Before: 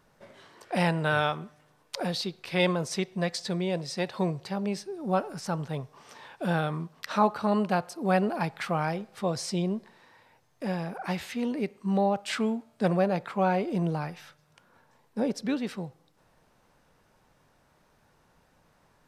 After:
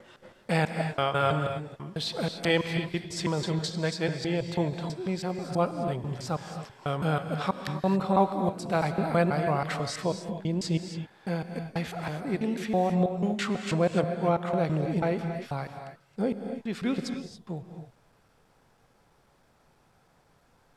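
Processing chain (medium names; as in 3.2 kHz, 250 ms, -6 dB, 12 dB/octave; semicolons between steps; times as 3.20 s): slices played last to first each 150 ms, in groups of 3; gated-style reverb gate 280 ms rising, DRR 6.5 dB; speed mistake 48 kHz file played as 44.1 kHz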